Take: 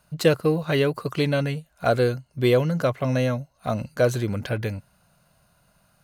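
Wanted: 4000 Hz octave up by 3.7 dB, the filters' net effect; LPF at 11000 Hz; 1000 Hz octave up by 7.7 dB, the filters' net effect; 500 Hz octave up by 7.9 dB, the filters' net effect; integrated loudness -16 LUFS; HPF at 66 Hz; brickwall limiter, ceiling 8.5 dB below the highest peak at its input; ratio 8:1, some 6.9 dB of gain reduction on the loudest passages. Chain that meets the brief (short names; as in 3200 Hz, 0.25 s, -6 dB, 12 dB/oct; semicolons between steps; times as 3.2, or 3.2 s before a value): HPF 66 Hz; LPF 11000 Hz; bell 500 Hz +7 dB; bell 1000 Hz +8 dB; bell 4000 Hz +4 dB; compressor 8:1, threshold -13 dBFS; gain +7.5 dB; limiter -4 dBFS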